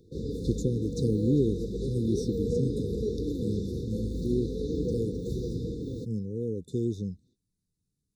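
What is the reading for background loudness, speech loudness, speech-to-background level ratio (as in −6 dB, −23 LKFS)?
−33.5 LKFS, −32.0 LKFS, 1.5 dB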